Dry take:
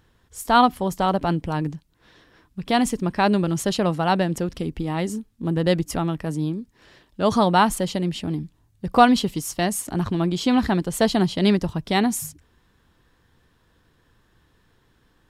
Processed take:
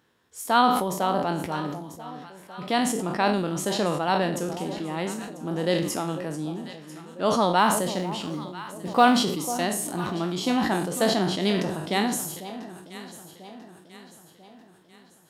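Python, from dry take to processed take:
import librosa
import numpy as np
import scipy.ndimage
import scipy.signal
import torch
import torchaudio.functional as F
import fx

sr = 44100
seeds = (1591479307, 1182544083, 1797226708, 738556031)

p1 = fx.spec_trails(x, sr, decay_s=0.43)
p2 = scipy.signal.sosfilt(scipy.signal.butter(2, 200.0, 'highpass', fs=sr, output='sos'), p1)
p3 = fx.quant_companded(p2, sr, bits=8, at=(7.58, 9.17))
p4 = p3 + fx.echo_alternate(p3, sr, ms=496, hz=910.0, feedback_pct=68, wet_db=-12.0, dry=0)
p5 = fx.sustainer(p4, sr, db_per_s=47.0)
y = p5 * librosa.db_to_amplitude(-4.5)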